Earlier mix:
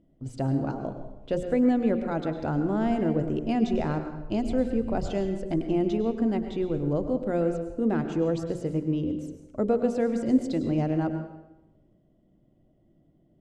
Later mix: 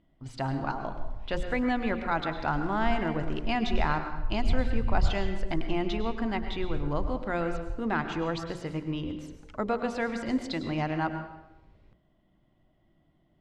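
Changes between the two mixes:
background +11.5 dB; master: add graphic EQ 125/250/500/1000/2000/4000/8000 Hz -4/-5/-8/+9/+7/+8/-5 dB

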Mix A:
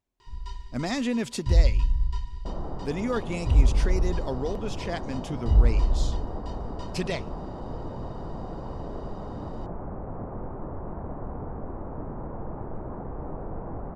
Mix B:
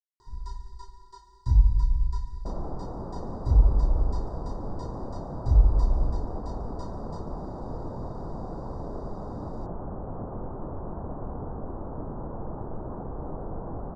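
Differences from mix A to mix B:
speech: muted; master: add Butterworth band-stop 2.6 kHz, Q 0.82

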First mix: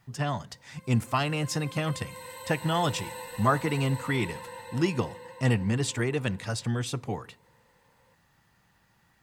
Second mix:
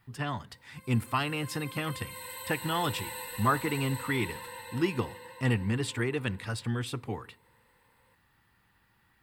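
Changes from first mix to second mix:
background: add treble shelf 3.3 kHz +9.5 dB; master: add fifteen-band graphic EQ 160 Hz -7 dB, 630 Hz -8 dB, 6.3 kHz -12 dB

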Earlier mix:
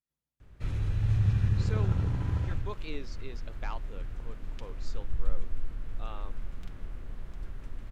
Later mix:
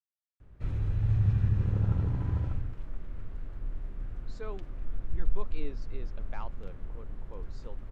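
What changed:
speech: entry +2.70 s; master: add treble shelf 2.1 kHz -11.5 dB

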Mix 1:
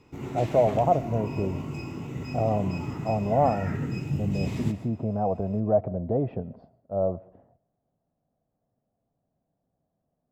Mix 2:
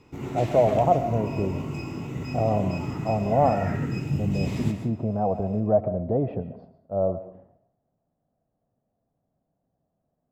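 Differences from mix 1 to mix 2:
speech: send +11.5 dB; background: send +6.5 dB

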